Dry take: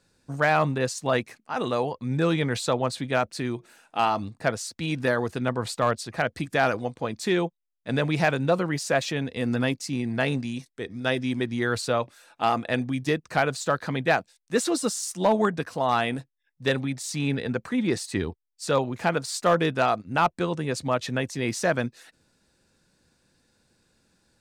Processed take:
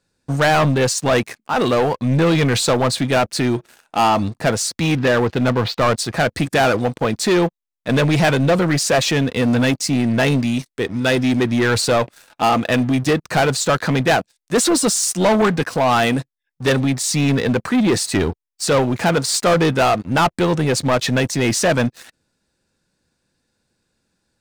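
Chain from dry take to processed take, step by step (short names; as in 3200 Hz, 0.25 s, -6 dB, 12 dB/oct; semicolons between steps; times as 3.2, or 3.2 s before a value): 4.96–5.87 LPF 4300 Hz 24 dB/oct; sample leveller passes 3; gain +2 dB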